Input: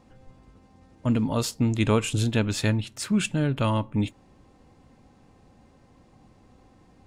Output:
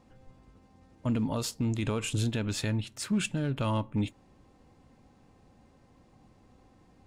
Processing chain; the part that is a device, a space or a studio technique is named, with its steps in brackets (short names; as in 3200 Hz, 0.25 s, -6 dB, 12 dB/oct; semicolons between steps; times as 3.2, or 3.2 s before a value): limiter into clipper (limiter -16.5 dBFS, peak gain reduction 7 dB; hard clip -17.5 dBFS, distortion -33 dB); gain -4 dB